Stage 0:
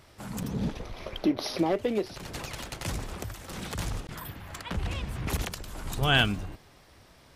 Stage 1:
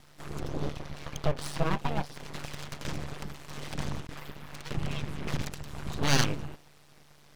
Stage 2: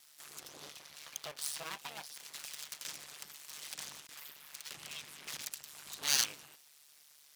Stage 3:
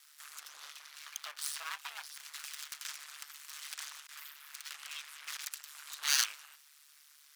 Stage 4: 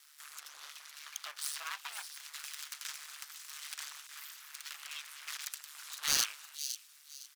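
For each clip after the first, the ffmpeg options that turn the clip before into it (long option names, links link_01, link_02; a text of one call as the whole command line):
ffmpeg -i in.wav -filter_complex "[0:a]acrossover=split=6100[link_01][link_02];[link_02]acompressor=threshold=-60dB:ratio=4:attack=1:release=60[link_03];[link_01][link_03]amix=inputs=2:normalize=0,aeval=exprs='val(0)*sin(2*PI*73*n/s)':channel_layout=same,aeval=exprs='abs(val(0))':channel_layout=same,volume=3dB" out.wav
ffmpeg -i in.wav -af "aderivative,volume=4dB" out.wav
ffmpeg -i in.wav -af "highpass=frequency=1300:width_type=q:width=1.8" out.wav
ffmpeg -i in.wav -filter_complex "[0:a]acrossover=split=3200[link_01][link_02];[link_01]aeval=exprs='(mod(25.1*val(0)+1,2)-1)/25.1':channel_layout=same[link_03];[link_02]aecho=1:1:510|1020|1530:0.376|0.101|0.0274[link_04];[link_03][link_04]amix=inputs=2:normalize=0" out.wav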